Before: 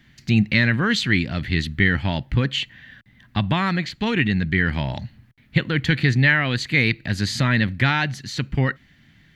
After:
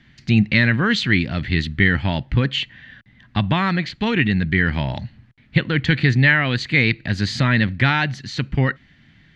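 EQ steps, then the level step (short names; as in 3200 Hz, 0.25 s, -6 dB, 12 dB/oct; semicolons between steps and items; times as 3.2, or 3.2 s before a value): LPF 5200 Hz 12 dB/oct; +2.0 dB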